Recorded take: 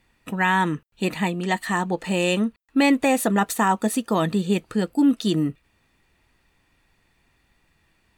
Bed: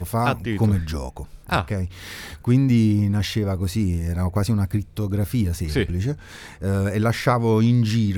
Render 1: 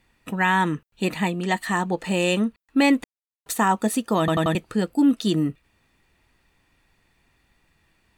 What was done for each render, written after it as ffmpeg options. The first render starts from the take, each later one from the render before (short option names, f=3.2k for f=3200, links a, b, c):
-filter_complex "[0:a]asplit=7[a][b][c][d][e][f][g];[a]atrim=end=3.04,asetpts=PTS-STARTPTS,afade=t=out:st=3.036:d=0.004:c=hsin[h];[b]atrim=start=3.04:end=3.46,asetpts=PTS-STARTPTS,volume=0[i];[c]atrim=start=3.46:end=4.282,asetpts=PTS-STARTPTS,afade=t=in:d=0.004:c=hsin[j];[d]atrim=start=4.188:end=4.282[k];[e]atrim=start=4.188:end=4.282[l];[f]atrim=start=4.188:end=4.282[m];[g]atrim=start=4.548[n];[h][i][j]concat=n=3:v=0:a=1[o];[o][k]acrossfade=d=0.004:c1=hsin:c2=hsin[p];[p][l]acrossfade=d=0.004:c1=hsin:c2=hsin[q];[q][m]acrossfade=d=0.004:c1=hsin:c2=hsin[r];[r][n]acrossfade=d=0.004:c1=hsin:c2=hsin"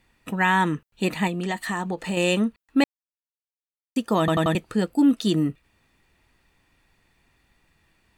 -filter_complex "[0:a]asettb=1/sr,asplit=3[a][b][c];[a]atrim=end=1.274[d];[b]atrim=start=1.27:end=2.17,asetpts=PTS-STARTPTS,afade=t=in:d=0.004:c=qsin,afade=t=out:st=0.896:d=0.004:c=qsin,acompressor=threshold=-23dB:ratio=4:attack=3.2:release=140:knee=1:detection=peak[e];[c]atrim=start=2.166[f];[d][e]acrossfade=d=0.004:c1=hsin:c2=qsin[g];[g][f]acrossfade=d=0.004:c1=qsin:c2=hsin,asplit=3[h][i][j];[h]atrim=end=2.84,asetpts=PTS-STARTPTS,afade=t=out:st=2.836:d=0.004:c=hsin[k];[i]atrim=start=2.84:end=3.96,asetpts=PTS-STARTPTS,volume=0[l];[j]atrim=start=3.96,asetpts=PTS-STARTPTS,afade=t=in:d=0.004:c=hsin[m];[k][l][m]concat=n=3:v=0:a=1"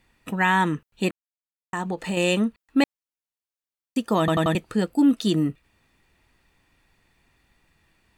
-filter_complex "[0:a]asplit=3[a][b][c];[a]atrim=end=1.11,asetpts=PTS-STARTPTS,afade=t=out:st=1.106:d=0.004:c=hsin[d];[b]atrim=start=1.11:end=1.73,asetpts=PTS-STARTPTS,volume=0[e];[c]atrim=start=1.73,asetpts=PTS-STARTPTS,afade=t=in:d=0.004:c=hsin[f];[d][e][f]concat=n=3:v=0:a=1"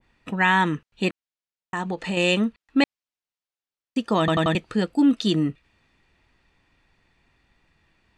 -af "lowpass=5.6k,adynamicequalizer=threshold=0.0178:dfrequency=1600:dqfactor=0.7:tfrequency=1600:tqfactor=0.7:attack=5:release=100:ratio=0.375:range=2:mode=boostabove:tftype=highshelf"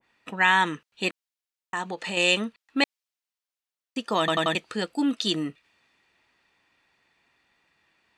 -af "highpass=f=550:p=1,adynamicequalizer=threshold=0.0158:dfrequency=2900:dqfactor=0.7:tfrequency=2900:tqfactor=0.7:attack=5:release=100:ratio=0.375:range=2:mode=boostabove:tftype=highshelf"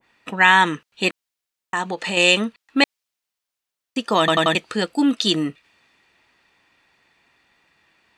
-af "volume=6.5dB,alimiter=limit=-2dB:level=0:latency=1"